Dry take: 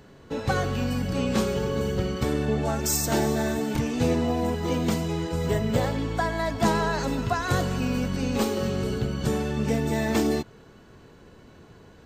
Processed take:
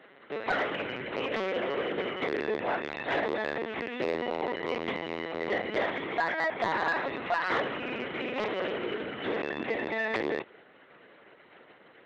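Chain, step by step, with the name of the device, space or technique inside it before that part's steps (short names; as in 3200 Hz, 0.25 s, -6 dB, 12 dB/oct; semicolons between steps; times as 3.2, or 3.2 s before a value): talking toy (LPC vocoder at 8 kHz pitch kept; HPF 390 Hz 12 dB/oct; bell 2000 Hz +9.5 dB 0.47 oct; soft clip -19.5 dBFS, distortion -16 dB)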